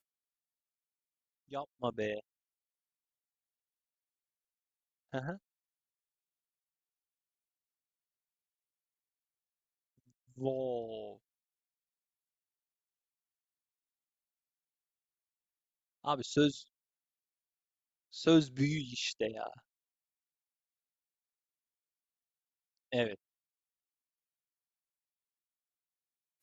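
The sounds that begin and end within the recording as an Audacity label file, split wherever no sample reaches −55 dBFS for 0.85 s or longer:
1.510000	2.200000	sound
5.130000	5.370000	sound
10.360000	11.170000	sound
16.040000	16.630000	sound
18.130000	19.590000	sound
22.920000	23.150000	sound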